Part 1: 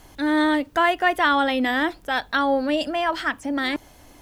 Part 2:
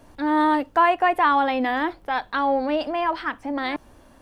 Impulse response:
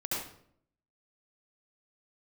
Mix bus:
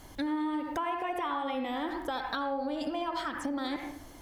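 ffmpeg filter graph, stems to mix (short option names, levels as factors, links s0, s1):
-filter_complex "[0:a]bandreject=f=2600:w=9,volume=0.75[s0];[1:a]bandreject=f=600:w=19,volume=0.282,asplit=3[s1][s2][s3];[s2]volume=0.596[s4];[s3]apad=whole_len=185855[s5];[s0][s5]sidechaincompress=threshold=0.00891:ratio=8:attack=33:release=108[s6];[2:a]atrim=start_sample=2205[s7];[s4][s7]afir=irnorm=-1:irlink=0[s8];[s6][s1][s8]amix=inputs=3:normalize=0,acompressor=threshold=0.0316:ratio=6"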